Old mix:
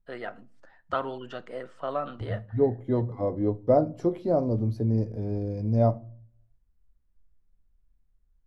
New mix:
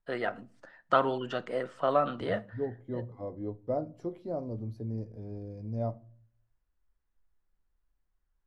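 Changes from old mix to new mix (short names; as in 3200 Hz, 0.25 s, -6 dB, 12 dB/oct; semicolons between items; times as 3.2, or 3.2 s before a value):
first voice +4.5 dB; second voice -11.0 dB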